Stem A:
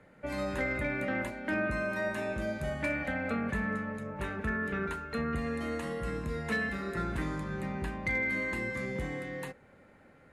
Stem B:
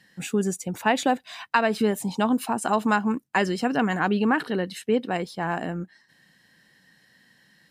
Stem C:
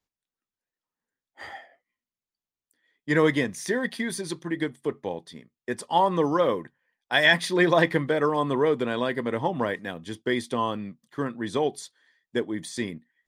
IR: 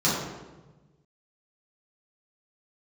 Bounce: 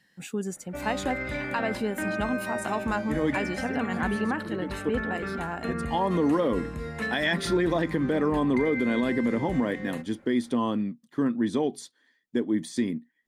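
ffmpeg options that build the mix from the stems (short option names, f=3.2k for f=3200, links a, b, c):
-filter_complex "[0:a]adelay=500,volume=0.5dB[a];[1:a]volume=-7dB,asplit=2[b][c];[2:a]equalizer=f=250:t=o:w=1:g=12.5,volume=-2.5dB[d];[c]apad=whole_len=585289[e];[d][e]sidechaincompress=threshold=-39dB:ratio=8:attack=5.1:release=372[f];[a][b][f]amix=inputs=3:normalize=0,alimiter=limit=-16dB:level=0:latency=1:release=95"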